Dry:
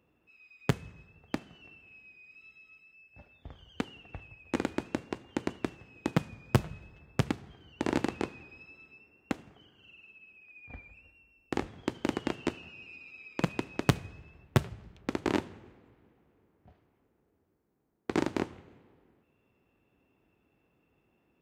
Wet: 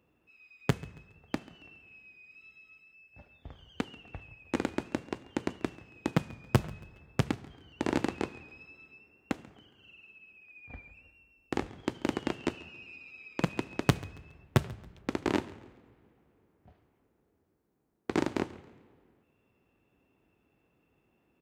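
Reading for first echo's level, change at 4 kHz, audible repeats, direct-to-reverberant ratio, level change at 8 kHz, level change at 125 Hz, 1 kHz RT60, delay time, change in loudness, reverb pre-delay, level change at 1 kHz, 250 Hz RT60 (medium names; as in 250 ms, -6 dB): -21.5 dB, 0.0 dB, 2, no reverb, 0.0 dB, 0.0 dB, no reverb, 138 ms, 0.0 dB, no reverb, 0.0 dB, no reverb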